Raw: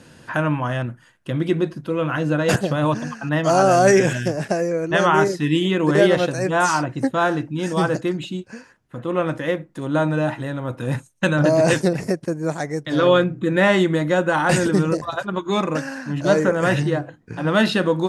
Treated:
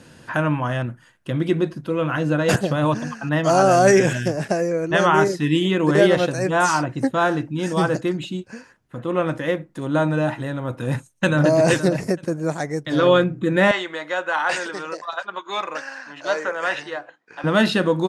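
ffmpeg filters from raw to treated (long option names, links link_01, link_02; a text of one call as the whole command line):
ffmpeg -i in.wav -filter_complex "[0:a]asplit=2[link_01][link_02];[link_02]afade=type=in:start_time=10.8:duration=0.01,afade=type=out:start_time=11.49:duration=0.01,aecho=0:1:470|940:0.266073|0.0399109[link_03];[link_01][link_03]amix=inputs=2:normalize=0,asettb=1/sr,asplit=3[link_04][link_05][link_06];[link_04]atrim=end=13.714[link_07];[link_05]atrim=start=13.71:end=17.44,asetpts=PTS-STARTPTS,afade=type=in:duration=0.004:curve=qsin,afade=type=out:start_time=3.726:duration=0.004:curve=qsin,highpass=770,lowpass=5400[link_08];[link_06]atrim=start=17.436[link_09];[link_07][link_08]acrossfade=duration=0.004:curve1=hsin:curve2=qsin[link_10];[link_10][link_09]acrossfade=duration=0.004:curve1=qsin:curve2=hsin" out.wav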